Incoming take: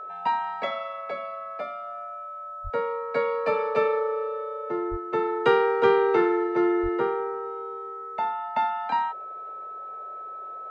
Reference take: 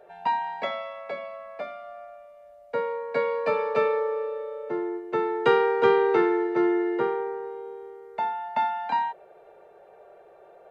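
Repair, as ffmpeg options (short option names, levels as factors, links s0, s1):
-filter_complex "[0:a]bandreject=f=1300:w=30,asplit=3[s0][s1][s2];[s0]afade=t=out:st=2.63:d=0.02[s3];[s1]highpass=f=140:w=0.5412,highpass=f=140:w=1.3066,afade=t=in:st=2.63:d=0.02,afade=t=out:st=2.75:d=0.02[s4];[s2]afade=t=in:st=2.75:d=0.02[s5];[s3][s4][s5]amix=inputs=3:normalize=0,asplit=3[s6][s7][s8];[s6]afade=t=out:st=4.9:d=0.02[s9];[s7]highpass=f=140:w=0.5412,highpass=f=140:w=1.3066,afade=t=in:st=4.9:d=0.02,afade=t=out:st=5.02:d=0.02[s10];[s8]afade=t=in:st=5.02:d=0.02[s11];[s9][s10][s11]amix=inputs=3:normalize=0,asplit=3[s12][s13][s14];[s12]afade=t=out:st=6.82:d=0.02[s15];[s13]highpass=f=140:w=0.5412,highpass=f=140:w=1.3066,afade=t=in:st=6.82:d=0.02,afade=t=out:st=6.94:d=0.02[s16];[s14]afade=t=in:st=6.94:d=0.02[s17];[s15][s16][s17]amix=inputs=3:normalize=0"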